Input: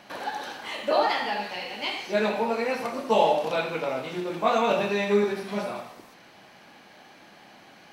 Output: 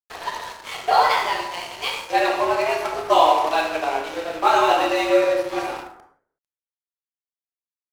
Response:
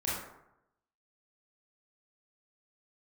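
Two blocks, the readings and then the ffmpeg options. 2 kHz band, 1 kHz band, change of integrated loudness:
+5.5 dB, +8.5 dB, +6.0 dB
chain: -filter_complex "[0:a]afreqshift=150,aeval=exprs='sgn(val(0))*max(abs(val(0))-0.0119,0)':c=same,asplit=2[a][b];[1:a]atrim=start_sample=2205,afade=t=out:st=0.43:d=0.01,atrim=end_sample=19404[c];[b][c]afir=irnorm=-1:irlink=0,volume=-9dB[d];[a][d]amix=inputs=2:normalize=0,volume=4dB"

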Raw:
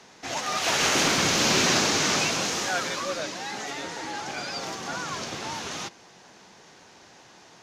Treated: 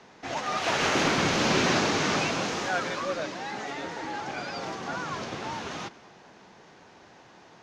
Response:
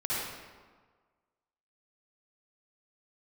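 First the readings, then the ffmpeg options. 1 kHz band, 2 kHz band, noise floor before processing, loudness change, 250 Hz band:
0.0 dB, -2.0 dB, -52 dBFS, -3.0 dB, +1.0 dB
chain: -filter_complex "[0:a]aemphasis=mode=reproduction:type=75fm,asplit=2[a][b];[1:a]atrim=start_sample=2205,adelay=110[c];[b][c]afir=irnorm=-1:irlink=0,volume=-27dB[d];[a][d]amix=inputs=2:normalize=0"

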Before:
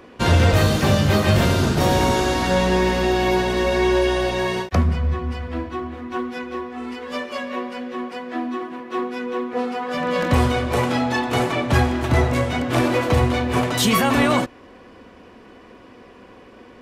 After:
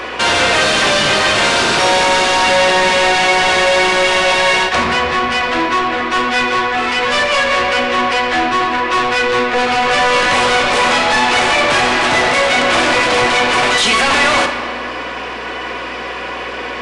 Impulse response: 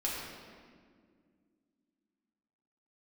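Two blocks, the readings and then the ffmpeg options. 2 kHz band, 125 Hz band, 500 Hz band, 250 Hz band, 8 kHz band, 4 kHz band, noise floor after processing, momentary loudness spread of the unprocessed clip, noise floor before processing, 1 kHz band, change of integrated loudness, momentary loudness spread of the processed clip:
+14.0 dB, -10.5 dB, +6.0 dB, -1.0 dB, +10.5 dB, +13.5 dB, -24 dBFS, 12 LU, -46 dBFS, +11.0 dB, +8.0 dB, 12 LU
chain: -filter_complex "[0:a]highpass=f=370:p=1,asplit=2[a][b];[b]highpass=f=720:p=1,volume=33dB,asoftclip=type=tanh:threshold=-7dB[c];[a][c]amix=inputs=2:normalize=0,lowpass=f=1.8k:p=1,volume=-6dB,acrossover=split=2000[d][e];[e]acontrast=82[f];[d][f]amix=inputs=2:normalize=0,aeval=exprs='val(0)+0.01*(sin(2*PI*60*n/s)+sin(2*PI*2*60*n/s)/2+sin(2*PI*3*60*n/s)/3+sin(2*PI*4*60*n/s)/4+sin(2*PI*5*60*n/s)/5)':c=same,asplit=2[g][h];[1:a]atrim=start_sample=2205,lowshelf=f=440:g=-8.5[i];[h][i]afir=irnorm=-1:irlink=0,volume=-5dB[j];[g][j]amix=inputs=2:normalize=0,aresample=22050,aresample=44100,volume=-3.5dB"

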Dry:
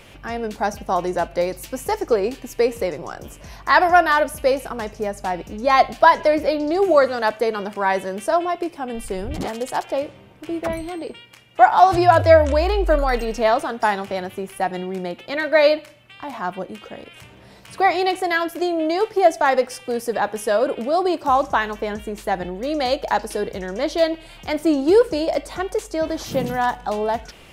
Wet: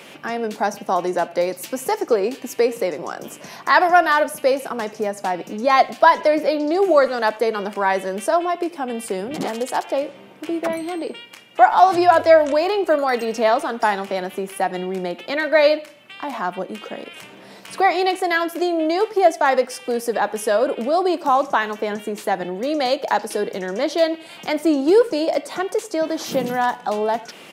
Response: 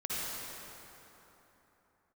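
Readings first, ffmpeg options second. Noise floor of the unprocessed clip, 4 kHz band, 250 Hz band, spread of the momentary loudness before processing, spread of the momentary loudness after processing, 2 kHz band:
-46 dBFS, +1.0 dB, +1.0 dB, 14 LU, 13 LU, +0.5 dB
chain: -filter_complex "[0:a]highpass=f=180:w=0.5412,highpass=f=180:w=1.3066,asplit=2[a][b];[b]acompressor=threshold=-31dB:ratio=6,volume=0.5dB[c];[a][c]amix=inputs=2:normalize=0,asplit=2[d][e];[e]adelay=90,highpass=300,lowpass=3.4k,asoftclip=type=hard:threshold=-10.5dB,volume=-22dB[f];[d][f]amix=inputs=2:normalize=0,volume=-1dB"

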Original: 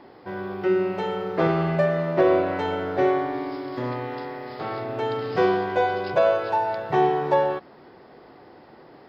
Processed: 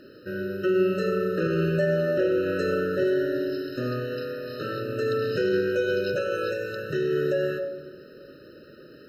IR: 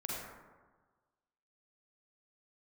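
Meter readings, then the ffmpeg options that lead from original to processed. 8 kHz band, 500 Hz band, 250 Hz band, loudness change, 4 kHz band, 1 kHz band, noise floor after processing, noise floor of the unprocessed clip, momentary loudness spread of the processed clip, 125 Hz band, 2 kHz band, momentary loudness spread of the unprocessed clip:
n/a, -1.5 dB, -0.5 dB, -2.5 dB, 0.0 dB, -14.0 dB, -49 dBFS, -49 dBFS, 9 LU, -0.5 dB, -0.5 dB, 11 LU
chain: -filter_complex "[0:a]aemphasis=mode=production:type=75fm,alimiter=limit=-17dB:level=0:latency=1:release=48,asplit=2[a][b];[1:a]atrim=start_sample=2205,asetrate=33516,aresample=44100[c];[b][c]afir=irnorm=-1:irlink=0,volume=-10.5dB[d];[a][d]amix=inputs=2:normalize=0,afftfilt=real='re*eq(mod(floor(b*sr/1024/620),2),0)':imag='im*eq(mod(floor(b*sr/1024/620),2),0)':win_size=1024:overlap=0.75"

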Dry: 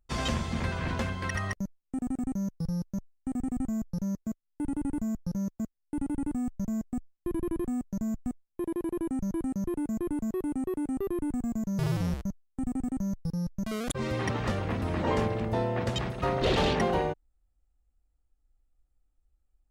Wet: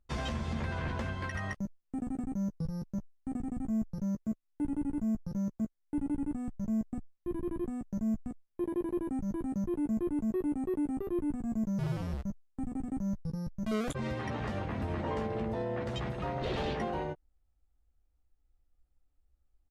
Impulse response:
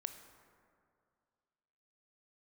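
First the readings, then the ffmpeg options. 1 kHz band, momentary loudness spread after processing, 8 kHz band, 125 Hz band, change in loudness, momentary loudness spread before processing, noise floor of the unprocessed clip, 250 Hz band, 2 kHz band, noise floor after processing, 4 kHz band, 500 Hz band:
-5.5 dB, 6 LU, n/a, -4.5 dB, -3.5 dB, 8 LU, -76 dBFS, -2.5 dB, -5.5 dB, -74 dBFS, -9.0 dB, -4.5 dB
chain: -filter_complex "[0:a]highshelf=f=4k:g=-8.5,alimiter=level_in=2.5dB:limit=-24dB:level=0:latency=1:release=108,volume=-2.5dB,asplit=2[a][b];[b]adelay=14,volume=-7dB[c];[a][c]amix=inputs=2:normalize=0" -ar 32000 -c:a libmp3lame -b:a 96k

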